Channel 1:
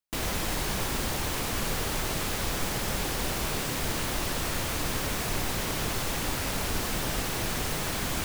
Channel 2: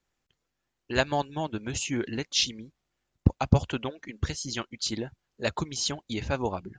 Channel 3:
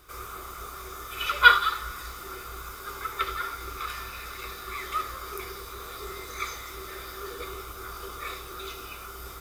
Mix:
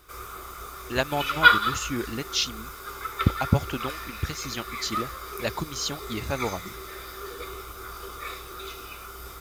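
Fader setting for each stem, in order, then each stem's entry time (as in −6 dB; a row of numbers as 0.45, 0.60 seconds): muted, −0.5 dB, 0.0 dB; muted, 0.00 s, 0.00 s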